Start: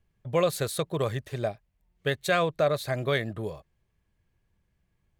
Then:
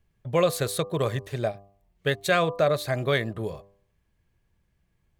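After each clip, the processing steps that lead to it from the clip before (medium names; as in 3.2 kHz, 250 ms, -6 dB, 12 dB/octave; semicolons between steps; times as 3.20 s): de-hum 99.34 Hz, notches 12; trim +2.5 dB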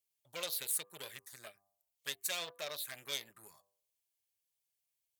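touch-sensitive phaser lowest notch 240 Hz, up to 1.6 kHz, full sweep at -19.5 dBFS; Chebyshev shaper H 8 -20 dB, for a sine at -12 dBFS; differentiator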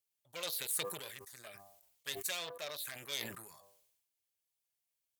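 decay stretcher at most 53 dB/s; trim -1.5 dB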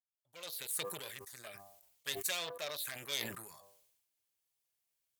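fade-in on the opening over 1.20 s; trim +2 dB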